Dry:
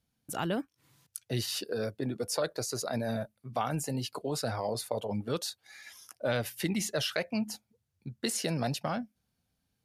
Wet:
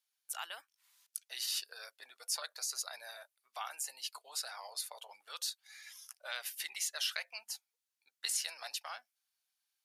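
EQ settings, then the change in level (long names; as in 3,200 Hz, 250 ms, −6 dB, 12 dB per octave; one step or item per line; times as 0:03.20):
high-pass filter 800 Hz 24 dB per octave
tilt shelving filter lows −6 dB, about 1,400 Hz
−6.0 dB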